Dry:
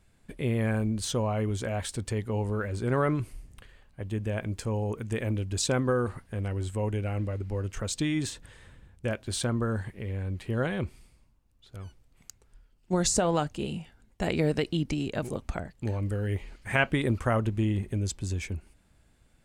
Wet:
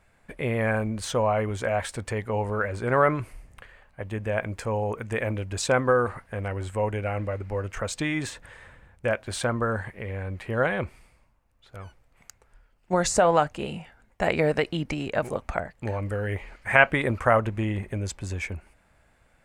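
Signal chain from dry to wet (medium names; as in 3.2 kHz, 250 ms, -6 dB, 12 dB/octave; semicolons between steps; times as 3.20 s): high-order bell 1.1 kHz +9.5 dB 2.6 oct; trim -1 dB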